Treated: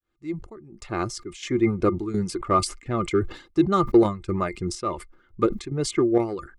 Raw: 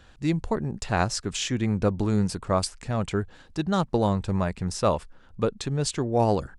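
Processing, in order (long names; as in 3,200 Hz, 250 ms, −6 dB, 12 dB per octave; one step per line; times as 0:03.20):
fade in at the beginning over 1.84 s
reverb reduction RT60 0.8 s
in parallel at −4.5 dB: hard clipping −19.5 dBFS, distortion −13 dB
on the sum: square-wave tremolo 1.4 Hz, depth 65%, duty 65%
tape wow and flutter 15 cents
hollow resonant body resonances 350/1,200/2,100 Hz, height 18 dB, ringing for 60 ms
level that may fall only so fast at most 130 dB per second
level −6 dB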